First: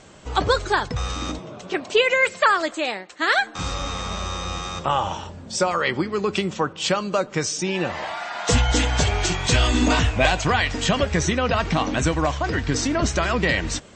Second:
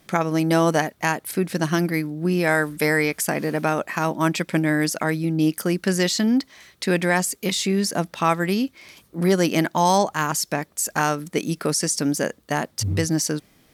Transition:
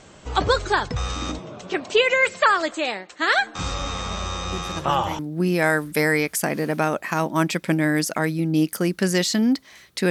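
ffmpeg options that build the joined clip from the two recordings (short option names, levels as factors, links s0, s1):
-filter_complex "[1:a]asplit=2[s0][s1];[0:a]apad=whole_dur=10.1,atrim=end=10.1,atrim=end=5.192[s2];[s1]atrim=start=2.038:end=6.95[s3];[s0]atrim=start=1.37:end=2.04,asetpts=PTS-STARTPTS,volume=0.266,afade=t=in:d=0.004:c=hsin,afade=t=out:st=0.666:d=0.004:c=hsin,adelay=4520[s4];[s2][s3]acrossfade=d=0.004:c1=hsin:c2=hsin[s5];[s5][s4]amix=inputs=2:normalize=0"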